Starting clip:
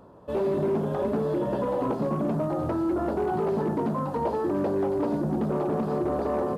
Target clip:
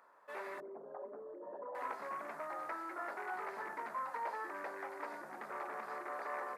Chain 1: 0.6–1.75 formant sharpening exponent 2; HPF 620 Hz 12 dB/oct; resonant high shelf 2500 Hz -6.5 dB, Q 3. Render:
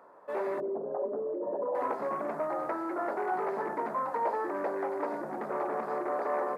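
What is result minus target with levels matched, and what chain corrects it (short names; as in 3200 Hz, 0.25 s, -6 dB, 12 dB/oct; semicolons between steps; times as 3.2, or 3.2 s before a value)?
2000 Hz band -8.0 dB
0.6–1.75 formant sharpening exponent 2; HPF 1600 Hz 12 dB/oct; resonant high shelf 2500 Hz -6.5 dB, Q 3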